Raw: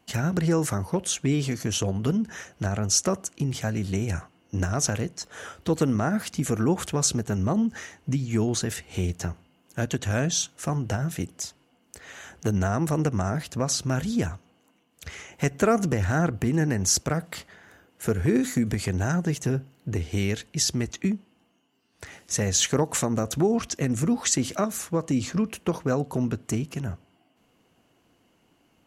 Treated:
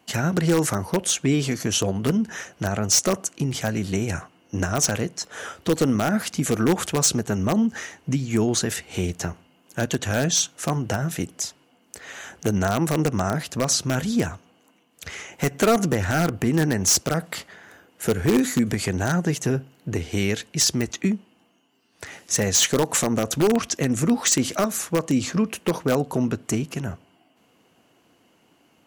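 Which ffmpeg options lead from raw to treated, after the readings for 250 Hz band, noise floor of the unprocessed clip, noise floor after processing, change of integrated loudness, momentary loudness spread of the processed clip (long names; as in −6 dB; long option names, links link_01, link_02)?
+3.0 dB, −66 dBFS, −61 dBFS, +3.0 dB, 11 LU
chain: -filter_complex "[0:a]highpass=frequency=170:poles=1,asplit=2[link_01][link_02];[link_02]aeval=exprs='(mod(5.96*val(0)+1,2)-1)/5.96':channel_layout=same,volume=-5.5dB[link_03];[link_01][link_03]amix=inputs=2:normalize=0,volume=1.5dB"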